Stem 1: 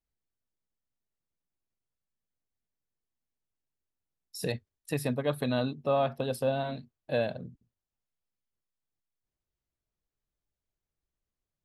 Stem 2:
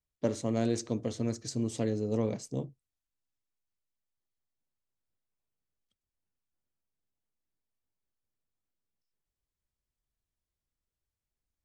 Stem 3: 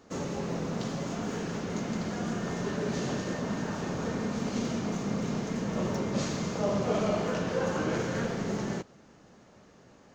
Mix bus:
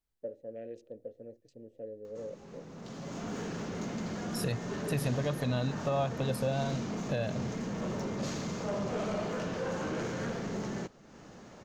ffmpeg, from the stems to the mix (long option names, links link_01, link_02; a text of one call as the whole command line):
ffmpeg -i stem1.wav -i stem2.wav -i stem3.wav -filter_complex "[0:a]asubboost=boost=5.5:cutoff=110,volume=1dB[link_01];[1:a]afwtdn=0.00501,asplit=3[link_02][link_03][link_04];[link_02]bandpass=frequency=530:width_type=q:width=8,volume=0dB[link_05];[link_03]bandpass=frequency=1840:width_type=q:width=8,volume=-6dB[link_06];[link_04]bandpass=frequency=2480:width_type=q:width=8,volume=-9dB[link_07];[link_05][link_06][link_07]amix=inputs=3:normalize=0,lowshelf=frequency=210:gain=11,volume=-4dB,asplit=2[link_08][link_09];[2:a]acompressor=mode=upward:threshold=-39dB:ratio=2.5,asoftclip=type=tanh:threshold=-26dB,adelay=2050,volume=-2.5dB[link_10];[link_09]apad=whole_len=537898[link_11];[link_10][link_11]sidechaincompress=threshold=-55dB:ratio=6:attack=21:release=701[link_12];[link_01][link_08][link_12]amix=inputs=3:normalize=0,alimiter=limit=-21.5dB:level=0:latency=1:release=235" out.wav